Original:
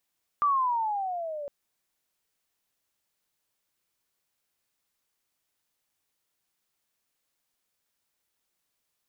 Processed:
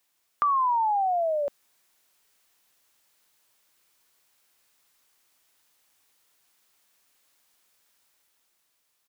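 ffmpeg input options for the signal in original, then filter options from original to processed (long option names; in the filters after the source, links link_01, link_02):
-f lavfi -i "aevalsrc='pow(10,(-20-13.5*t/1.06)/20)*sin(2*PI*1190*1.06/(-13*log(2)/12)*(exp(-13*log(2)/12*t/1.06)-1))':duration=1.06:sample_rate=44100"
-filter_complex "[0:a]dynaudnorm=framelen=110:gausssize=17:maxgain=5dB,firequalizer=gain_entry='entry(170,0);entry(250,3);entry(990,7)':delay=0.05:min_phase=1,acrossover=split=420[link_01][link_02];[link_02]acompressor=threshold=-25dB:ratio=2.5[link_03];[link_01][link_03]amix=inputs=2:normalize=0"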